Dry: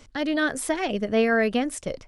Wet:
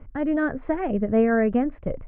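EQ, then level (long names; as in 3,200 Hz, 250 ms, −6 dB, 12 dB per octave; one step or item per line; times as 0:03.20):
Bessel low-pass filter 1,300 Hz, order 8
low-shelf EQ 160 Hz +12 dB
0.0 dB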